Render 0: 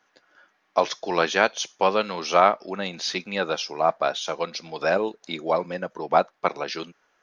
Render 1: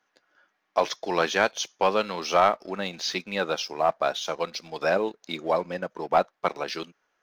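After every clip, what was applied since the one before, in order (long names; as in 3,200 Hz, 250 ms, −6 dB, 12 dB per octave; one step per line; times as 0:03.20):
leveller curve on the samples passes 1
level −5 dB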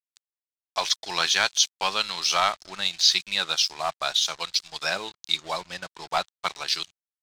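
dead-zone distortion −48.5 dBFS
graphic EQ with 10 bands 250 Hz −12 dB, 500 Hz −11 dB, 4,000 Hz +11 dB, 8,000 Hz +11 dB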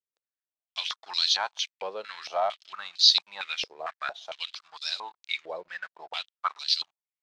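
band-pass on a step sequencer 4.4 Hz 480–4,200 Hz
level +4 dB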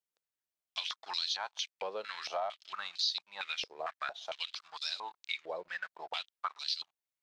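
downward compressor 3 to 1, threshold −35 dBFS, peak gain reduction 16 dB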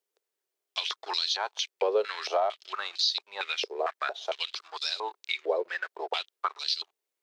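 high-pass with resonance 400 Hz, resonance Q 4.8
level +5.5 dB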